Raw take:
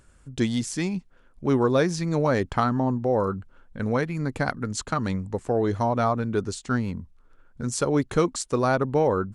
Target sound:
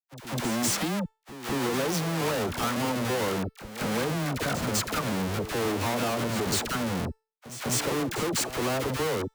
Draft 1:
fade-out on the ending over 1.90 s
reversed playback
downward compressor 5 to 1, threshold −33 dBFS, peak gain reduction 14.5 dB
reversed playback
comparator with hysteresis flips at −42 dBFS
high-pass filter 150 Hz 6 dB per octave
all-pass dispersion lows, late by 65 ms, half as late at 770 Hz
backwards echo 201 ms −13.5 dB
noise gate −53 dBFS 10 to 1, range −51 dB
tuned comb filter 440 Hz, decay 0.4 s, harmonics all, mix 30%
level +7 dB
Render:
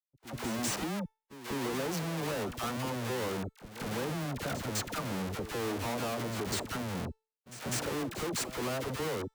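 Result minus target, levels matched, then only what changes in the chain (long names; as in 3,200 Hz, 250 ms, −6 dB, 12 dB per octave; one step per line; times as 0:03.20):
downward compressor: peak gain reduction +7 dB
change: downward compressor 5 to 1, threshold −24.5 dBFS, peak gain reduction 8 dB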